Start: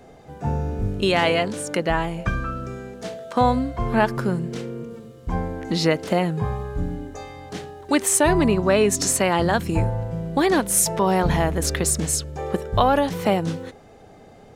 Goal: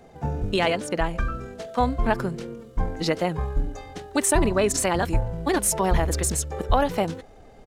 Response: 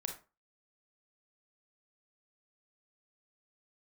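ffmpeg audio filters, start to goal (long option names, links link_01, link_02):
-af "asubboost=boost=5:cutoff=53,atempo=1.9,volume=-2dB"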